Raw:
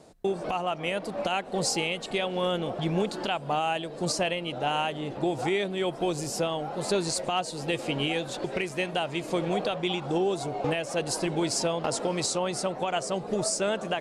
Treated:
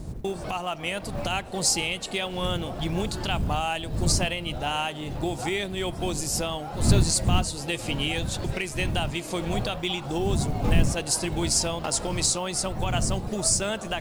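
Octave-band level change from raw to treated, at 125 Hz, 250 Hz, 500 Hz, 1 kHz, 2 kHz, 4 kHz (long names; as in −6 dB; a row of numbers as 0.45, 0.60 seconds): +8.5, +1.5, −3.0, −1.0, +1.5, +3.5 decibels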